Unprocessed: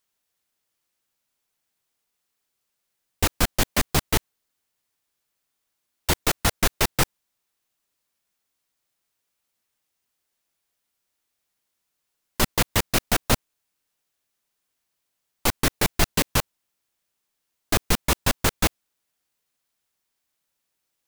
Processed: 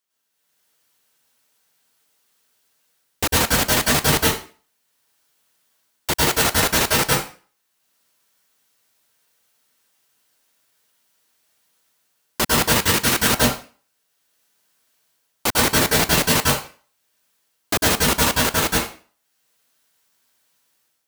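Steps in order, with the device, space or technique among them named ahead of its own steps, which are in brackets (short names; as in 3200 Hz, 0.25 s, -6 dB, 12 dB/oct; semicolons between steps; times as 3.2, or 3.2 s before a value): far laptop microphone (reverb RT60 0.40 s, pre-delay 97 ms, DRR -4.5 dB; HPF 180 Hz 6 dB/oct; AGC gain up to 10 dB); 12.78–13.34 bell 670 Hz -8.5 dB 0.43 oct; gain -3 dB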